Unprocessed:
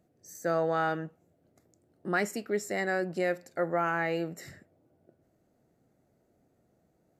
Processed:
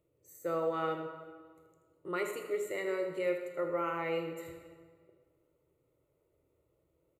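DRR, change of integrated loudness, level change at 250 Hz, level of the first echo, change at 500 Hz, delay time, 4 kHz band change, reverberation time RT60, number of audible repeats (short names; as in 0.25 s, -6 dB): 4.0 dB, -4.5 dB, -5.5 dB, -10.5 dB, -2.5 dB, 79 ms, -4.5 dB, 1.7 s, 1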